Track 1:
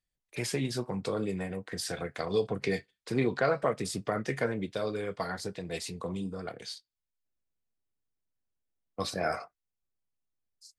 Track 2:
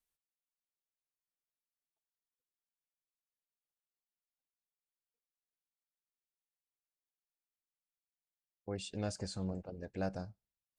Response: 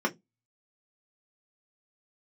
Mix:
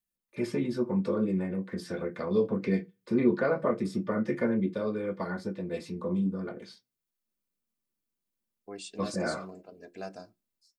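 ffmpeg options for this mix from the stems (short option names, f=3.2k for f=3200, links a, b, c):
-filter_complex "[0:a]highshelf=f=2.6k:g=-11,volume=-11dB,asplit=2[a][b];[b]volume=-4dB[c];[1:a]highpass=300,aecho=1:1:3:0.45,volume=-5dB,asplit=2[d][e];[e]volume=-17.5dB[f];[2:a]atrim=start_sample=2205[g];[c][f]amix=inputs=2:normalize=0[h];[h][g]afir=irnorm=-1:irlink=0[i];[a][d][i]amix=inputs=3:normalize=0,highshelf=f=9.4k:g=7.5,dynaudnorm=f=110:g=5:m=6dB"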